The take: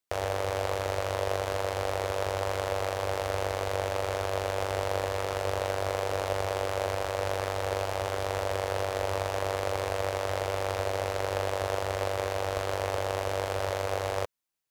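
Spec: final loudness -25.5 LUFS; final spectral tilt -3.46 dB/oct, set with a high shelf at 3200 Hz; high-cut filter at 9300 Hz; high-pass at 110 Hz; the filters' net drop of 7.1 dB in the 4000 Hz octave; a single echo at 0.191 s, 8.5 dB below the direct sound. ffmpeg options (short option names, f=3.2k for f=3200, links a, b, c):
-af "highpass=110,lowpass=9.3k,highshelf=f=3.2k:g=-8,equalizer=f=4k:t=o:g=-3.5,aecho=1:1:191:0.376,volume=6dB"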